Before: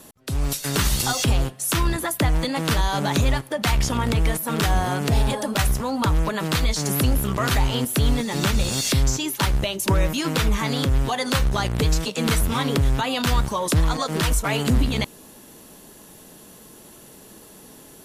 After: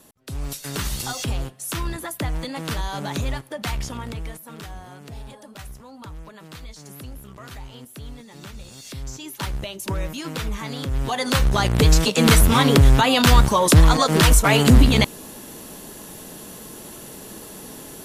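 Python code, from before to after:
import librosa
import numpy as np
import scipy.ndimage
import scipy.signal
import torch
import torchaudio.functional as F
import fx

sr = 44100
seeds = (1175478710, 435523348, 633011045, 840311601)

y = fx.gain(x, sr, db=fx.line((3.68, -6.0), (4.79, -18.0), (8.78, -18.0), (9.43, -7.0), (10.83, -7.0), (11.14, 0.0), (12.08, 7.0)))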